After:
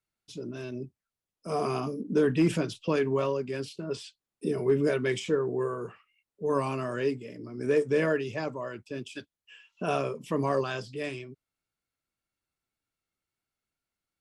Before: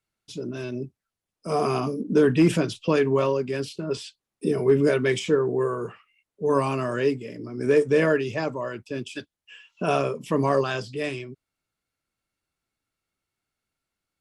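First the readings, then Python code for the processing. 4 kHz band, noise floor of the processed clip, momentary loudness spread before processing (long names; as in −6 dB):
−5.5 dB, below −85 dBFS, 15 LU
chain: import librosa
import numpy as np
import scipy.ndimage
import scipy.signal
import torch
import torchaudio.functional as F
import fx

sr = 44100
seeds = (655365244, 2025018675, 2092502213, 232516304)

y = fx.wow_flutter(x, sr, seeds[0], rate_hz=2.1, depth_cents=22.0)
y = F.gain(torch.from_numpy(y), -5.5).numpy()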